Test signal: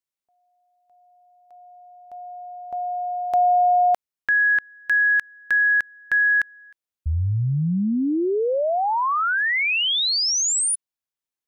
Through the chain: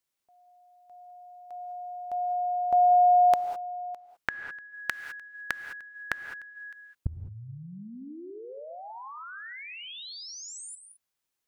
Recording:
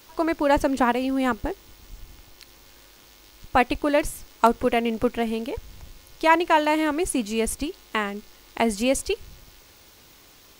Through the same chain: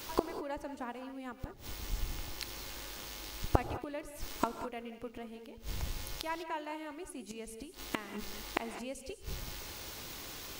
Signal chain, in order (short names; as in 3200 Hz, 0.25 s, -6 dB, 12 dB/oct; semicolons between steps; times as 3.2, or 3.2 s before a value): flipped gate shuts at -21 dBFS, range -27 dB; non-linear reverb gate 0.23 s rising, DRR 9 dB; gain +6 dB